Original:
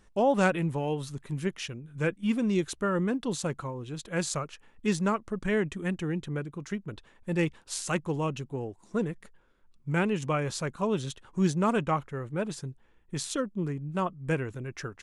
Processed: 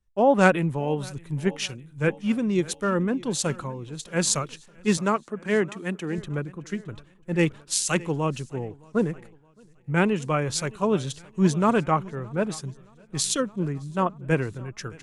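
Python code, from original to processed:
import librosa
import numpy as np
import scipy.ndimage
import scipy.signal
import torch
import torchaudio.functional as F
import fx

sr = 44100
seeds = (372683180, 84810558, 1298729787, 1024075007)

p1 = fx.highpass(x, sr, hz=190.0, slope=12, at=(4.97, 6.18))
p2 = fx.rider(p1, sr, range_db=3, speed_s=0.5)
p3 = p1 + (p2 * 10.0 ** (-1.5 / 20.0))
p4 = fx.echo_feedback(p3, sr, ms=618, feedback_pct=59, wet_db=-18.5)
p5 = fx.band_widen(p4, sr, depth_pct=70)
y = p5 * 10.0 ** (-1.0 / 20.0)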